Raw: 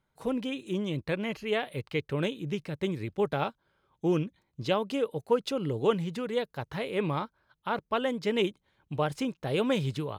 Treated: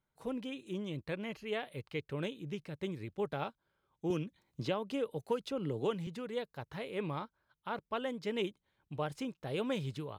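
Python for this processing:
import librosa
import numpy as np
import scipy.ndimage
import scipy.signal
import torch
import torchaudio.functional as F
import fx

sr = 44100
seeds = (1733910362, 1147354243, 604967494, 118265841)

y = fx.band_squash(x, sr, depth_pct=70, at=(4.1, 6.07))
y = y * librosa.db_to_amplitude(-8.0)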